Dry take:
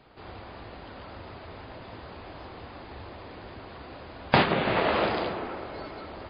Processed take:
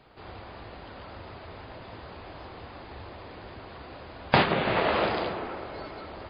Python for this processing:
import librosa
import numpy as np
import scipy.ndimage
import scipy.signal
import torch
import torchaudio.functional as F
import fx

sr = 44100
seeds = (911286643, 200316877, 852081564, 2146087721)

y = fx.peak_eq(x, sr, hz=260.0, db=-2.0, octaves=0.77)